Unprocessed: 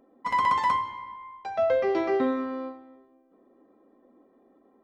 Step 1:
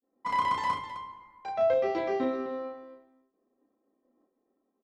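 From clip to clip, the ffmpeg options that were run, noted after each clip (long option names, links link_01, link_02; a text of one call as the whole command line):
ffmpeg -i in.wav -af "adynamicequalizer=threshold=0.0112:dfrequency=1400:dqfactor=0.82:tfrequency=1400:tqfactor=0.82:attack=5:release=100:ratio=0.375:range=2.5:mode=cutabove:tftype=bell,agate=range=-33dB:threshold=-50dB:ratio=3:detection=peak,aecho=1:1:32.07|259.5:0.708|0.282,volume=-3.5dB" out.wav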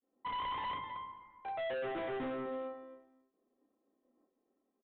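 ffmpeg -i in.wav -af "asoftclip=type=hard:threshold=-32dB,aresample=8000,aresample=44100,volume=-4dB" out.wav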